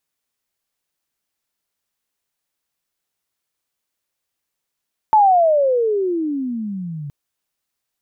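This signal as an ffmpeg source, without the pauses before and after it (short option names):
-f lavfi -i "aevalsrc='pow(10,(-8-18.5*t/1.97)/20)*sin(2*PI*886*1.97/(-32*log(2)/12)*(exp(-32*log(2)/12*t/1.97)-1))':d=1.97:s=44100"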